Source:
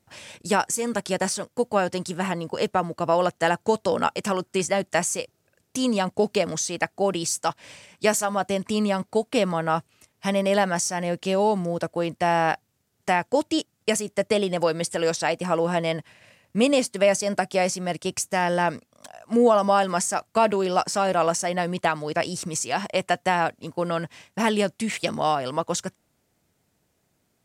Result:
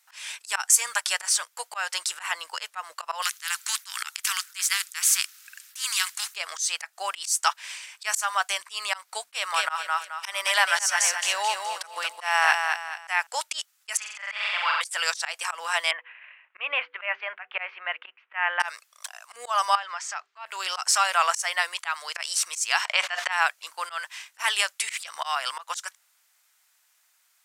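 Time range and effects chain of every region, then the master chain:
3.22–6.36 inverse Chebyshev high-pass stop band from 400 Hz, stop band 60 dB + spectral compressor 2:1
9.2–13.27 expander -53 dBFS + notches 50/100/150/200/250 Hz + feedback echo 0.215 s, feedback 36%, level -5.5 dB
13.97–14.81 Butterworth band-pass 1600 Hz, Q 0.74 + flutter echo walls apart 7.6 m, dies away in 1.3 s
15.91–18.6 steep low-pass 2800 Hz 48 dB/oct + de-hum 98.98 Hz, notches 5
19.75–20.46 air absorption 180 m + notches 50/100/150/200/250/300/350/400/450 Hz + compressor 3:1, threshold -32 dBFS
22.85–23.32 LPF 4100 Hz + fast leveller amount 100%
whole clip: HPF 1100 Hz 24 dB/oct; high shelf 7900 Hz +3.5 dB; auto swell 0.152 s; gain +7.5 dB

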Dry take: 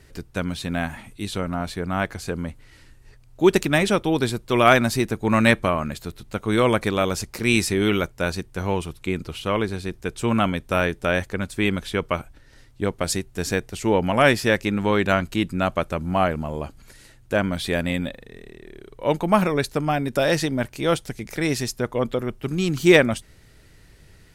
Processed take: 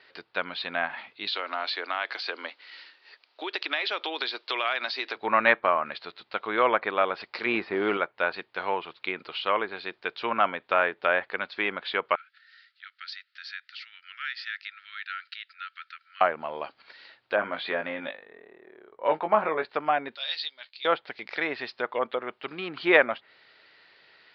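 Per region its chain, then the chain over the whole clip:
1.27–5.16 steep high-pass 260 Hz 48 dB/oct + high shelf 2800 Hz +12 dB + compressor, threshold -25 dBFS
7.46–7.97 tilt shelf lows +5.5 dB, about 1200 Hz + companded quantiser 6-bit
12.15–16.21 compressor 2.5:1, threshold -32 dBFS + rippled Chebyshev high-pass 1300 Hz, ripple 3 dB
17.36–19.65 low-pass opened by the level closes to 860 Hz, open at -16 dBFS + de-esser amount 100% + doubler 19 ms -6 dB
20.15–20.85 band-pass 4000 Hz, Q 3.7 + doubler 13 ms -9 dB
whole clip: steep low-pass 4700 Hz 72 dB/oct; treble ducked by the level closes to 1800 Hz, closed at -19 dBFS; HPF 750 Hz 12 dB/oct; gain +3 dB

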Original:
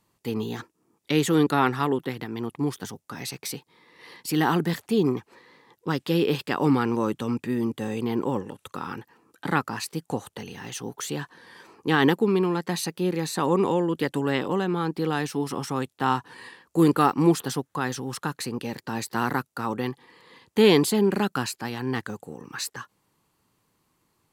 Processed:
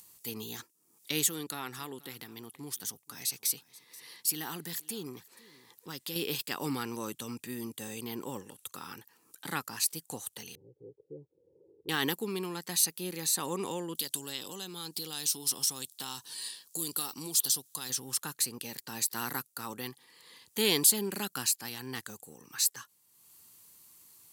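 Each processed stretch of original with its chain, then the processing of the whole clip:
1.26–6.16 compressor 1.5:1, threshold -34 dBFS + echo 0.482 s -22 dB
10.55–11.89 steep low-pass 540 Hz 48 dB/oct + low shelf 390 Hz -5.5 dB + comb 2.2 ms, depth 88%
13.95–17.9 resonant high shelf 2800 Hz +9 dB, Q 1.5 + compressor 2.5:1, threshold -30 dBFS
whole clip: pre-emphasis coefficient 0.8; upward compressor, threshold -53 dBFS; high shelf 3000 Hz +8 dB

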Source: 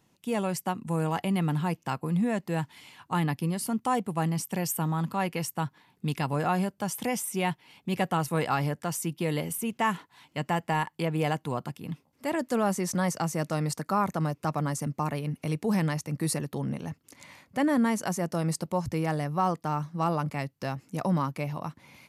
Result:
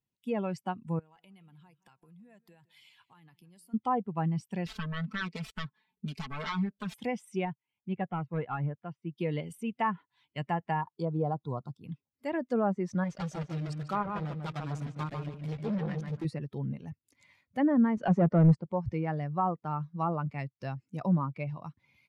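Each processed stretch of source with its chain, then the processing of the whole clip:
0.99–3.74 tilt +1.5 dB/oct + compressor 8:1, threshold -43 dBFS + warbling echo 0.166 s, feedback 42%, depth 98 cents, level -14.5 dB
4.66–6.94 self-modulated delay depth 0.86 ms + compressor 4:1, threshold -30 dBFS + comb 4.6 ms, depth 98%
7.45–9.18 hard clip -21 dBFS + air absorption 370 m + upward expander, over -41 dBFS
10.81–11.84 median filter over 3 samples + band shelf 2200 Hz -15 dB 1.1 oct
13.04–16.25 block floating point 3-bit + darkening echo 0.146 s, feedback 36%, low-pass 2500 Hz, level -4.5 dB + core saturation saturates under 710 Hz
17.97–18.55 sample leveller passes 3 + high shelf 5500 Hz -7 dB + three-band expander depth 40%
whole clip: per-bin expansion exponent 1.5; treble ducked by the level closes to 1400 Hz, closed at -26 dBFS; tone controls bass +3 dB, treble -5 dB

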